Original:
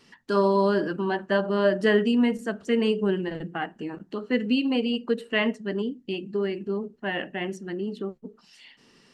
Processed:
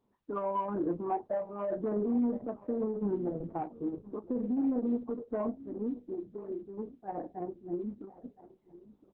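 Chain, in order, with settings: spectral noise reduction 16 dB; steep low-pass 1.1 kHz 48 dB/octave; peak limiter -24 dBFS, peak gain reduction 11.5 dB; saturation -22 dBFS, distortion -25 dB; doubling 29 ms -11 dB; delay 1016 ms -18.5 dB; Opus 6 kbps 48 kHz

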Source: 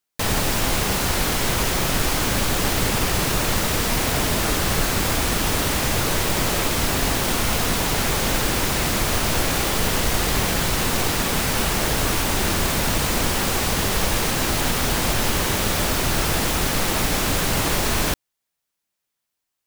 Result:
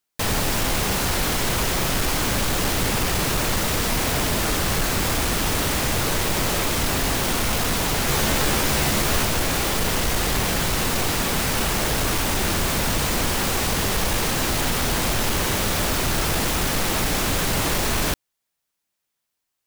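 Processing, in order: saturation -16 dBFS, distortion -16 dB; 8.07–9.25 s: doubling 14 ms -3 dB; trim +1 dB

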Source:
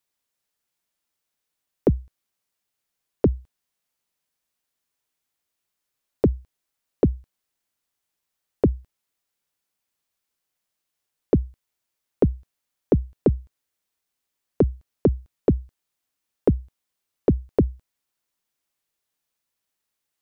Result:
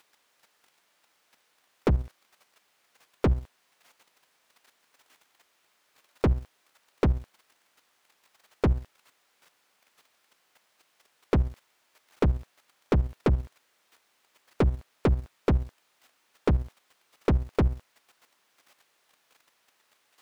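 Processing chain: partial rectifier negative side -7 dB; overdrive pedal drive 40 dB, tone 1.9 kHz, clips at -7.5 dBFS; level held to a coarse grid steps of 10 dB

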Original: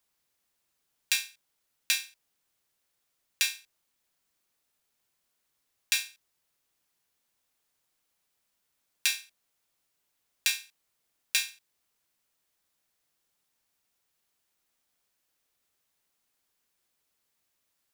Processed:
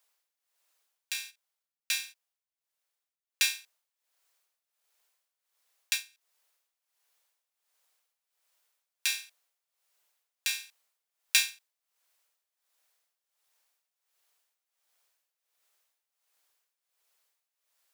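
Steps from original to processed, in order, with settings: tremolo 1.4 Hz, depth 81%; 1.14–3.51 s: gate -49 dBFS, range -10 dB; high-pass 470 Hz 24 dB/octave; trim +4 dB

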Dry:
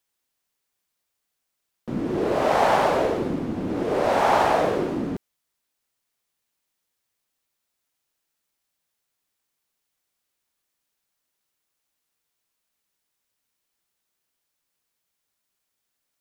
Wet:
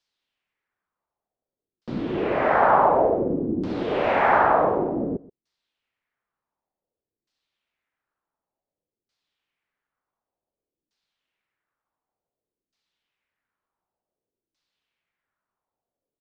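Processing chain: LFO low-pass saw down 0.55 Hz 320–5000 Hz; delay 128 ms -20.5 dB; trim -1.5 dB

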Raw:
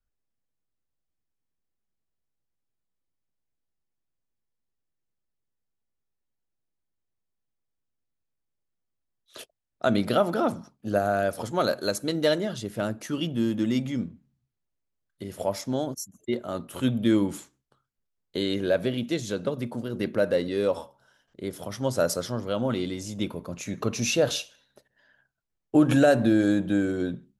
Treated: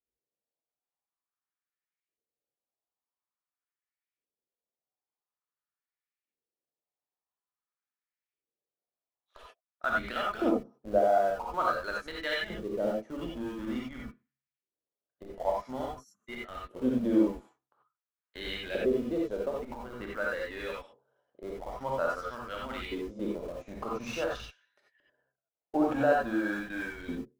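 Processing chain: dynamic bell 200 Hz, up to +5 dB, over -35 dBFS, Q 1.5; LFO band-pass saw up 0.48 Hz 390–2400 Hz; transient shaper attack -1 dB, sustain -6 dB; in parallel at -11.5 dB: Schmitt trigger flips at -42 dBFS; on the sum: gated-style reverb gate 110 ms rising, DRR -2.5 dB

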